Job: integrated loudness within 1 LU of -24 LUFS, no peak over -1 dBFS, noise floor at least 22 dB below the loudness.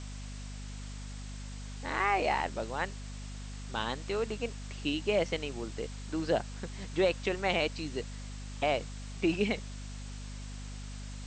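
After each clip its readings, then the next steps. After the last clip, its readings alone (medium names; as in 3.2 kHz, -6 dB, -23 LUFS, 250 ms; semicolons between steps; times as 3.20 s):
hum 50 Hz; highest harmonic 250 Hz; hum level -40 dBFS; noise floor -42 dBFS; noise floor target -57 dBFS; loudness -34.5 LUFS; peak level -15.0 dBFS; loudness target -24.0 LUFS
-> hum notches 50/100/150/200/250 Hz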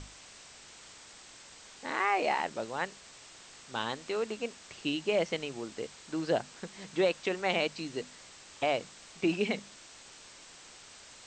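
hum not found; noise floor -53 dBFS; noise floor target -55 dBFS
-> noise reduction 6 dB, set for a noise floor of -53 dBFS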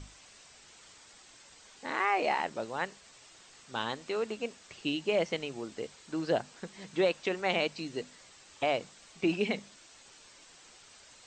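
noise floor -57 dBFS; loudness -33.0 LUFS; peak level -15.0 dBFS; loudness target -24.0 LUFS
-> trim +9 dB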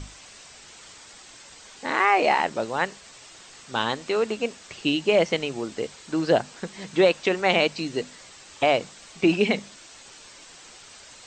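loudness -24.0 LUFS; peak level -6.0 dBFS; noise floor -48 dBFS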